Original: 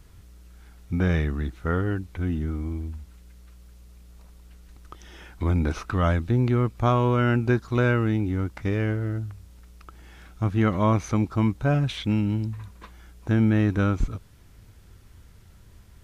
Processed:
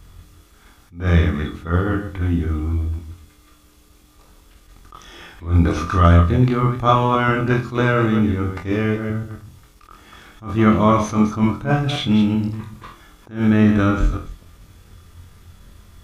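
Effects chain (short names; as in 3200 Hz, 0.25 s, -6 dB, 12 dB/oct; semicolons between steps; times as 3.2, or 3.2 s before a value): reverse delay 0.13 s, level -7 dB; notches 60/120/180 Hz; small resonant body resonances 1200/3400 Hz, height 10 dB; on a send: flutter echo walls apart 4 m, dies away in 0.28 s; on the sum: attack slew limiter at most 180 dB/s; gain +4.5 dB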